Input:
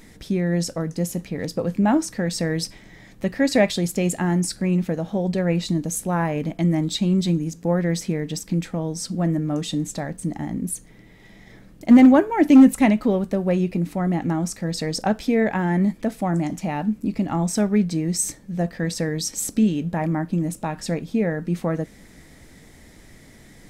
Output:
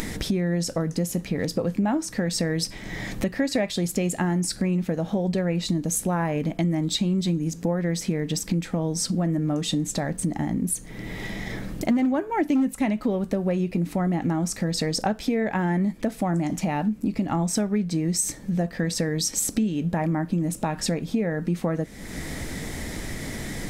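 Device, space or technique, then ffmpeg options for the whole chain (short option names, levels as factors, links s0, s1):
upward and downward compression: -af "acompressor=mode=upward:threshold=0.0794:ratio=2.5,acompressor=threshold=0.0708:ratio=6,volume=1.33"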